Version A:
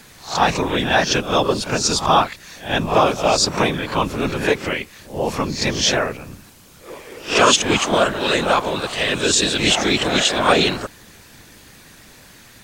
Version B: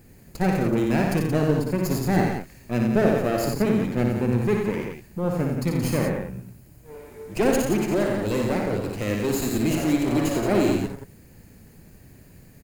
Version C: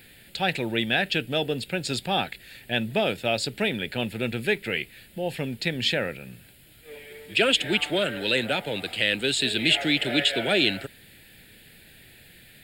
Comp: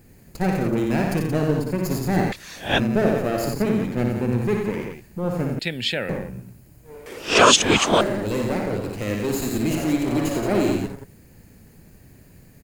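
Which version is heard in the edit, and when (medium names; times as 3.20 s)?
B
2.32–2.80 s: from A
5.59–6.09 s: from C
7.06–8.01 s: from A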